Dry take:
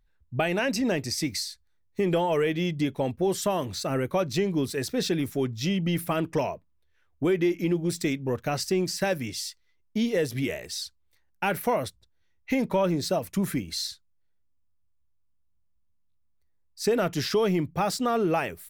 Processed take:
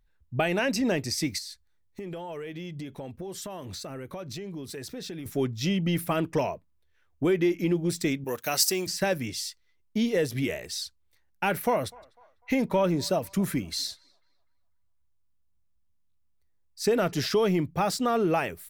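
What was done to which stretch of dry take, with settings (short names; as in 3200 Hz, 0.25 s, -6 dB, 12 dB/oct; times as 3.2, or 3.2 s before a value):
1.38–5.26 compressor, threshold -35 dBFS
8.24–8.87 RIAA curve recording
11.46–17.26 narrowing echo 0.249 s, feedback 47%, band-pass 1100 Hz, level -23 dB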